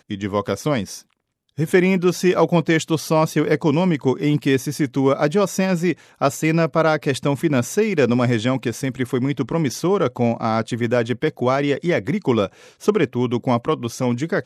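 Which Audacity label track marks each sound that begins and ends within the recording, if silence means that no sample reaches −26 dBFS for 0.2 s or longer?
1.590000	5.930000	sound
6.210000	12.460000	sound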